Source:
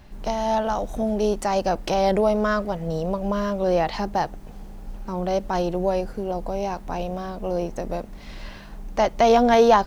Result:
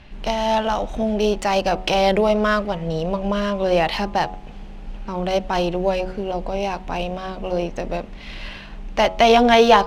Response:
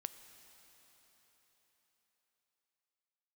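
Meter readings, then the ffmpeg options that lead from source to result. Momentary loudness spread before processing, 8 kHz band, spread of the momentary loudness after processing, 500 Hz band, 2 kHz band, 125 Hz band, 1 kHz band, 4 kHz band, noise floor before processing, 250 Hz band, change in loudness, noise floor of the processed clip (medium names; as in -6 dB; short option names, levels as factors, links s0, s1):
20 LU, +2.5 dB, 19 LU, +2.5 dB, +7.0 dB, +2.0 dB, +3.0 dB, +9.5 dB, -40 dBFS, +2.5 dB, +3.0 dB, -37 dBFS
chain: -af "equalizer=f=2800:w=1.3:g=10,adynamicsmooth=sensitivity=7:basefreq=6100,bandreject=f=92.85:t=h:w=4,bandreject=f=185.7:t=h:w=4,bandreject=f=278.55:t=h:w=4,bandreject=f=371.4:t=h:w=4,bandreject=f=464.25:t=h:w=4,bandreject=f=557.1:t=h:w=4,bandreject=f=649.95:t=h:w=4,bandreject=f=742.8:t=h:w=4,bandreject=f=835.65:t=h:w=4,bandreject=f=928.5:t=h:w=4,bandreject=f=1021.35:t=h:w=4,bandreject=f=1114.2:t=h:w=4,bandreject=f=1207.05:t=h:w=4,bandreject=f=1299.9:t=h:w=4,volume=1.33"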